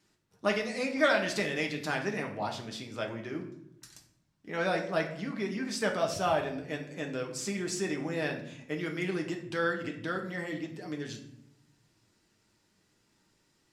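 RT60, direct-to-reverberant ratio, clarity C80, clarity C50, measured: 0.75 s, 1.0 dB, 12.0 dB, 8.5 dB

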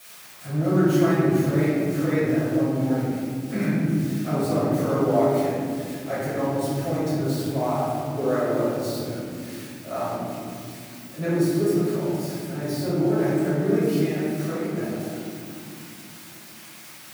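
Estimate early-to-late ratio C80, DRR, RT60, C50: 0.0 dB, −12.0 dB, non-exponential decay, −3.0 dB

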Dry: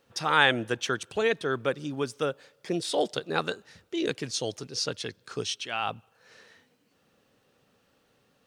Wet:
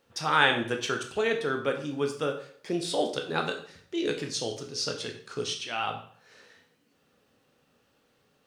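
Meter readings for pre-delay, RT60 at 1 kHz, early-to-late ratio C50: 6 ms, 0.50 s, 9.0 dB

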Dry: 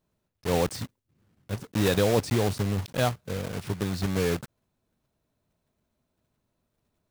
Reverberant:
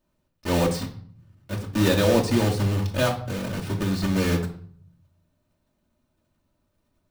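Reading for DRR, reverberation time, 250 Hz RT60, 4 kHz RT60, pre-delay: −1.5 dB, 0.55 s, 0.75 s, 0.40 s, 3 ms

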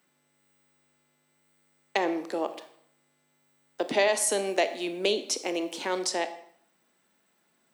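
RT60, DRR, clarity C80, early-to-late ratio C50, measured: 0.65 s, 10.0 dB, 15.0 dB, 12.5 dB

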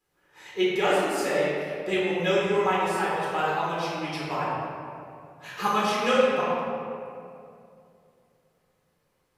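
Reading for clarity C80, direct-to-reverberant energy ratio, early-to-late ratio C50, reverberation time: −1.0 dB, −8.0 dB, −2.5 dB, 2.6 s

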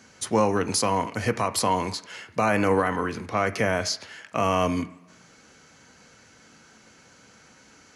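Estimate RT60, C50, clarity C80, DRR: 1.0 s, 15.5 dB, 18.5 dB, 9.0 dB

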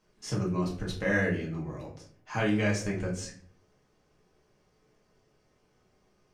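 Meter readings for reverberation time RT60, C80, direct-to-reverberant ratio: 0.55 s, 11.5 dB, −4.5 dB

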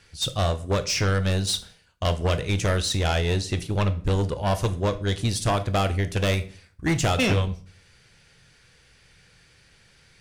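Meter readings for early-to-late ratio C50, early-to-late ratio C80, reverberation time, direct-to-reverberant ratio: 16.0 dB, 20.5 dB, 0.45 s, 10.0 dB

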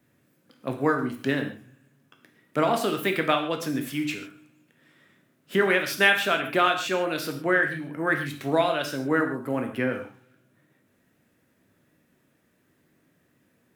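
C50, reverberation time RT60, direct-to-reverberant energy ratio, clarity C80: 8.5 dB, non-exponential decay, 4.0 dB, 11.5 dB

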